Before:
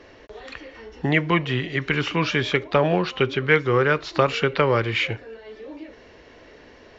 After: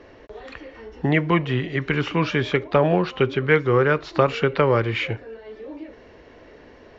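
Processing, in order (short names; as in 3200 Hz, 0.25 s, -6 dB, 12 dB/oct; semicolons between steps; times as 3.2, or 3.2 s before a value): high shelf 2100 Hz -8.5 dB; gain +2 dB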